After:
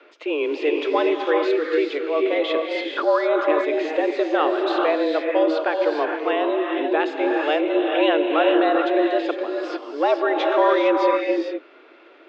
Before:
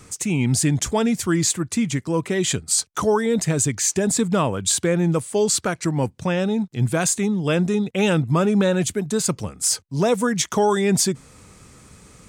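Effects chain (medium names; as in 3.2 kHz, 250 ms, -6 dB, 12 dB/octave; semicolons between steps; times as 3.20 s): mistuned SSB +150 Hz 190–3400 Hz; gated-style reverb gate 480 ms rising, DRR 1 dB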